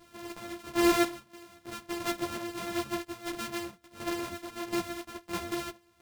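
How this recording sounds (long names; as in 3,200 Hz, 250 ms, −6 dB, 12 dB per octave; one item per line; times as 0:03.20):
a buzz of ramps at a fixed pitch in blocks of 128 samples
chopped level 1.5 Hz, depth 65%, duty 55%
a shimmering, thickened sound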